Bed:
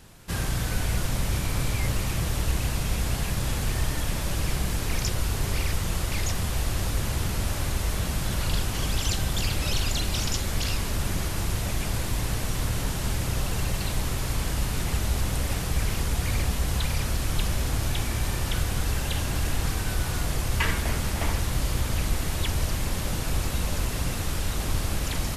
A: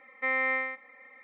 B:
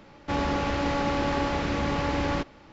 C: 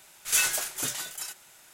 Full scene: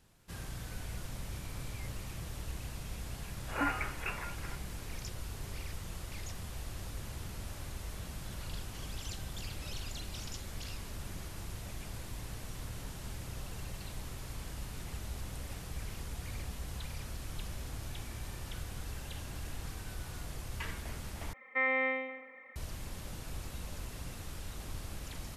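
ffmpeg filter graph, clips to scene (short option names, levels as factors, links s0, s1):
-filter_complex "[0:a]volume=0.168[s0];[3:a]lowpass=f=2500:t=q:w=0.5098,lowpass=f=2500:t=q:w=0.6013,lowpass=f=2500:t=q:w=0.9,lowpass=f=2500:t=q:w=2.563,afreqshift=-2900[s1];[1:a]asplit=2[s2][s3];[s3]adelay=115,lowpass=f=2800:p=1,volume=0.562,asplit=2[s4][s5];[s5]adelay=115,lowpass=f=2800:p=1,volume=0.38,asplit=2[s6][s7];[s7]adelay=115,lowpass=f=2800:p=1,volume=0.38,asplit=2[s8][s9];[s9]adelay=115,lowpass=f=2800:p=1,volume=0.38,asplit=2[s10][s11];[s11]adelay=115,lowpass=f=2800:p=1,volume=0.38[s12];[s2][s4][s6][s8][s10][s12]amix=inputs=6:normalize=0[s13];[s0]asplit=2[s14][s15];[s14]atrim=end=21.334[s16];[s13]atrim=end=1.23,asetpts=PTS-STARTPTS,volume=0.841[s17];[s15]atrim=start=22.556[s18];[s1]atrim=end=1.73,asetpts=PTS-STARTPTS,volume=0.944,afade=t=in:d=0.004:c=hsin,afade=t=out:st=1.726:d=0.004:c=hsin,adelay=3230[s19];[s16][s17]acrossfade=d=0.004:c1=hsin:c2=hsin[s20];[s20][s18]acrossfade=d=0.004:c1=hsin:c2=hsin[s21];[s21][s19]amix=inputs=2:normalize=0"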